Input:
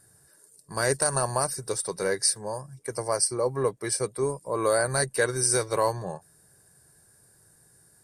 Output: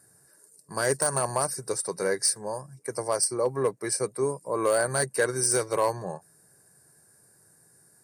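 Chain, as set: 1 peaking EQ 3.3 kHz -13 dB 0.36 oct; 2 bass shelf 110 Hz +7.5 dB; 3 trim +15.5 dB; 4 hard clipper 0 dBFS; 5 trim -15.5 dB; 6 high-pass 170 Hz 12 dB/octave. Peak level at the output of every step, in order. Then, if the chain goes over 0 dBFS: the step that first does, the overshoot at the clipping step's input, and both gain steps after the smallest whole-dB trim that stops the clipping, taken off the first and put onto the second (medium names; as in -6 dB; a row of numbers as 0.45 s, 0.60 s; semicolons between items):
-9.5 dBFS, -9.5 dBFS, +6.0 dBFS, 0.0 dBFS, -15.5 dBFS, -11.5 dBFS; step 3, 6.0 dB; step 3 +9.5 dB, step 5 -9.5 dB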